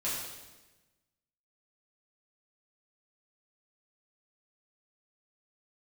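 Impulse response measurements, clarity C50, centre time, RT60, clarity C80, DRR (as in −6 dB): 0.5 dB, 73 ms, 1.1 s, 3.0 dB, −9.0 dB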